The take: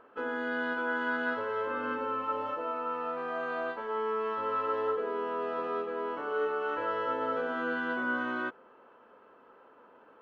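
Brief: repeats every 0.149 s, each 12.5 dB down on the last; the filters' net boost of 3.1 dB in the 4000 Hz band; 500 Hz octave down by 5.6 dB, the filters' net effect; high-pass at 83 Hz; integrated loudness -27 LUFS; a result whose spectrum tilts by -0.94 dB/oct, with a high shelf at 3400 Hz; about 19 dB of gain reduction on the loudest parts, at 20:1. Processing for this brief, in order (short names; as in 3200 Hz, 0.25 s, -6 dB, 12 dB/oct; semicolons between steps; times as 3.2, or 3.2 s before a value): HPF 83 Hz; bell 500 Hz -6.5 dB; high shelf 3400 Hz -4.5 dB; bell 4000 Hz +8 dB; compressor 20:1, threshold -48 dBFS; feedback echo 0.149 s, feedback 24%, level -12.5 dB; gain +24 dB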